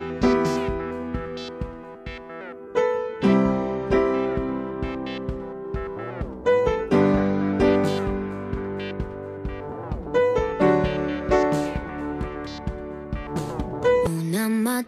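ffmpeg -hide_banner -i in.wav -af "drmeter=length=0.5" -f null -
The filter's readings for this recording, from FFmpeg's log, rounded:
Channel 1: DR: 7.5
Overall DR: 7.5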